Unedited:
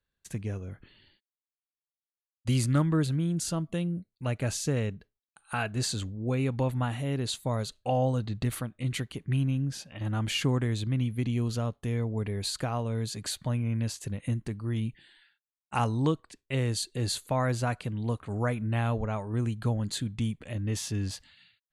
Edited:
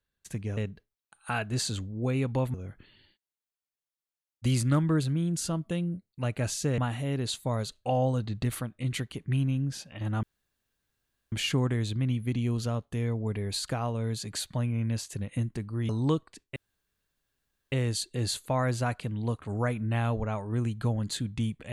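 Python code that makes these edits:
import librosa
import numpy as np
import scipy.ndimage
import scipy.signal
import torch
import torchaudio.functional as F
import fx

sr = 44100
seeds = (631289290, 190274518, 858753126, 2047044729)

y = fx.edit(x, sr, fx.move(start_s=4.81, length_s=1.97, to_s=0.57),
    fx.insert_room_tone(at_s=10.23, length_s=1.09),
    fx.cut(start_s=14.8, length_s=1.06),
    fx.insert_room_tone(at_s=16.53, length_s=1.16), tone=tone)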